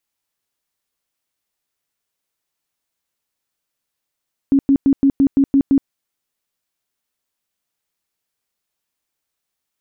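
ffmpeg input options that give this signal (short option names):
-f lavfi -i "aevalsrc='0.355*sin(2*PI*275*mod(t,0.17))*lt(mod(t,0.17),19/275)':d=1.36:s=44100"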